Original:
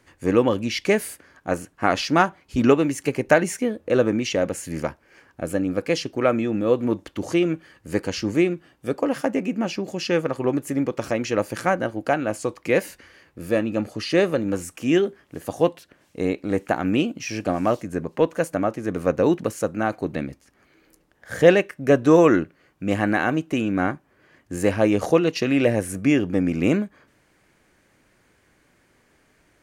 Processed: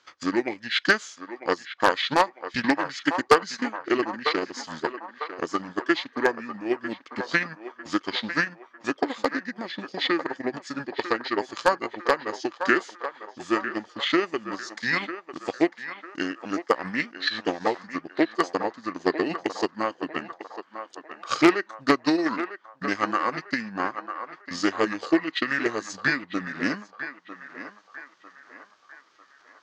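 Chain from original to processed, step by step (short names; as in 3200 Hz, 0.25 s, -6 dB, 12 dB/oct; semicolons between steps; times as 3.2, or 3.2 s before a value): transient shaper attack +11 dB, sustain -7 dB; weighting filter ITU-R 468; formant shift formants -6 st; in parallel at -6 dB: wrapped overs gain 0 dB; on the sum: air absorption 57 m; on a send: narrowing echo 0.949 s, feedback 54%, band-pass 1000 Hz, level -8.5 dB; on the sum: Doppler distortion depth 0.11 ms; gain -9 dB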